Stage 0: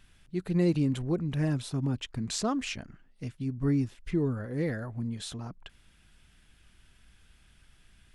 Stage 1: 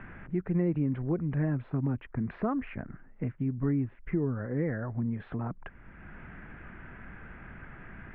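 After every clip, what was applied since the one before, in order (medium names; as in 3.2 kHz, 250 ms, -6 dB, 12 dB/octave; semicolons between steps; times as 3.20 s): steep low-pass 2.1 kHz 36 dB/octave; three bands compressed up and down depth 70%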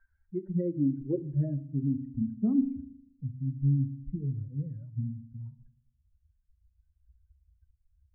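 expander on every frequency bin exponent 3; low-pass sweep 780 Hz -> 150 Hz, 0.45–3.38 s; on a send at -10.5 dB: reverberation RT60 0.60 s, pre-delay 4 ms; on the sum: trim +2.5 dB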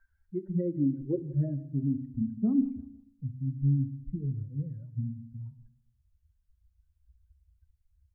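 feedback delay 168 ms, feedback 32%, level -19.5 dB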